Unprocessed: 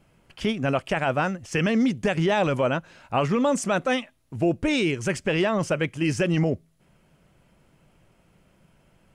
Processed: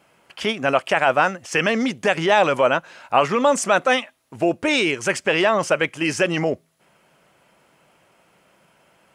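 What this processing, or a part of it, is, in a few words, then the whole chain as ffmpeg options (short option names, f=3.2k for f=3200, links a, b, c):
filter by subtraction: -filter_complex "[0:a]asplit=2[a][b];[b]lowpass=870,volume=-1[c];[a][c]amix=inputs=2:normalize=0,volume=6.5dB"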